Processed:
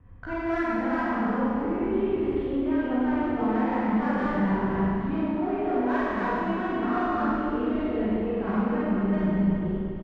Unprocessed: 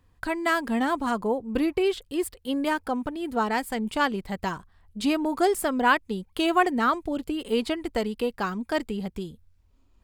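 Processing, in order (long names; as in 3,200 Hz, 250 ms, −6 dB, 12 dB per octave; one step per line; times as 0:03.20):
delay that plays each chunk backwards 242 ms, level −0.5 dB
low-pass filter 2,200 Hz 24 dB per octave
low-shelf EQ 280 Hz +11 dB
reversed playback
downward compressor 12 to 1, threshold −34 dBFS, peak gain reduction 22 dB
reversed playback
tuned comb filter 100 Hz, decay 0.17 s, harmonics all, mix 40%
pitch vibrato 4.1 Hz 46 cents
double-tracking delay 24 ms −12.5 dB
in parallel at −6.5 dB: soft clipping −40 dBFS, distortion −11 dB
on the sum: harmonic generator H 6 −29 dB, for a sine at −23 dBFS
four-comb reverb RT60 2.5 s, combs from 32 ms, DRR −10 dB
level +1 dB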